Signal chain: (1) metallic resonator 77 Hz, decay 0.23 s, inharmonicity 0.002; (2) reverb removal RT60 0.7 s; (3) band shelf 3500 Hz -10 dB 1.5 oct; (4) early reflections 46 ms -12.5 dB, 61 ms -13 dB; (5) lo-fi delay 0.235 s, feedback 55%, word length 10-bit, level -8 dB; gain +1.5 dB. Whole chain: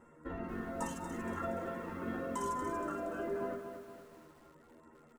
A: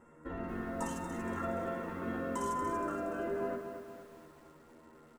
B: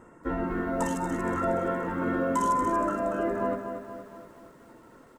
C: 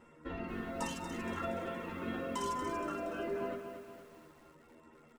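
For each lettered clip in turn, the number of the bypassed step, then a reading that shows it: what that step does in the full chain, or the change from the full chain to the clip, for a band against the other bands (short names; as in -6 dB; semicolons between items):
2, loudness change +2.0 LU; 1, 8 kHz band -3.0 dB; 3, 4 kHz band +9.0 dB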